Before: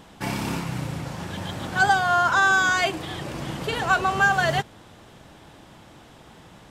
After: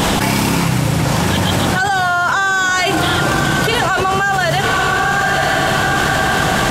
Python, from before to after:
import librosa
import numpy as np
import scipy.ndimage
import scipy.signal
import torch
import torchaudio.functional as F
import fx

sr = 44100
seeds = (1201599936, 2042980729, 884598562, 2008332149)

y = fx.high_shelf(x, sr, hz=5300.0, db=5.5)
y = fx.echo_diffused(y, sr, ms=983, feedback_pct=43, wet_db=-15.5)
y = fx.env_flatten(y, sr, amount_pct=100)